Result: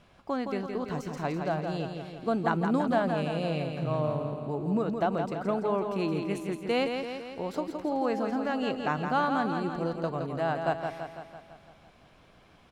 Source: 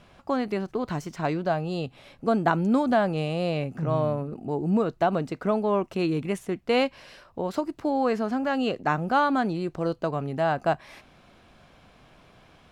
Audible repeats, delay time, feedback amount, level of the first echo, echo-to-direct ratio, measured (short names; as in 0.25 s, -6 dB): 7, 0.167 s, 59%, -6.0 dB, -4.0 dB